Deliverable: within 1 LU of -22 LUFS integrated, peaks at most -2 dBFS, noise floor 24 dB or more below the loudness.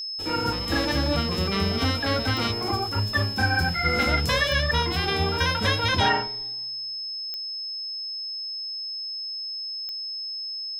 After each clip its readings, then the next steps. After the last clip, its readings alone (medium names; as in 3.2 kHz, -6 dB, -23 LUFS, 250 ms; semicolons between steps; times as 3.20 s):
clicks found 4; steady tone 5.2 kHz; tone level -30 dBFS; loudness -25.0 LUFS; peak level -9.5 dBFS; loudness target -22.0 LUFS
-> de-click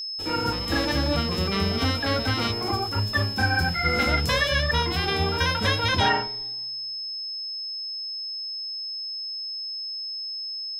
clicks found 0; steady tone 5.2 kHz; tone level -30 dBFS
-> band-stop 5.2 kHz, Q 30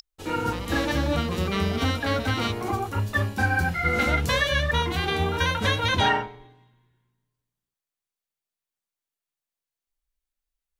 steady tone not found; loudness -24.5 LUFS; peak level -10.5 dBFS; loudness target -22.0 LUFS
-> trim +2.5 dB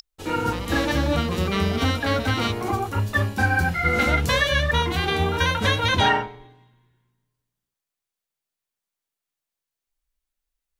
loudness -22.0 LUFS; peak level -8.0 dBFS; noise floor -87 dBFS